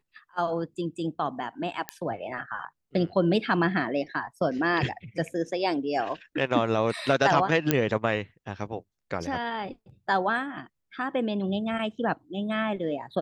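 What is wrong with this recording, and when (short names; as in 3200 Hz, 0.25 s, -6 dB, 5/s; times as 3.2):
1.89 pop -13 dBFS
7.71 pop -6 dBFS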